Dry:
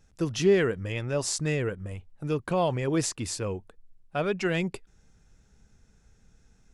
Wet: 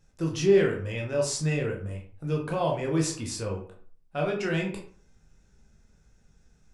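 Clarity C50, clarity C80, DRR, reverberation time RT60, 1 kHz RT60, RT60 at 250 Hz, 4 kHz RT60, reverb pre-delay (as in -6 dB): 7.0 dB, 11.5 dB, -0.5 dB, 0.45 s, 0.45 s, 0.50 s, 0.30 s, 13 ms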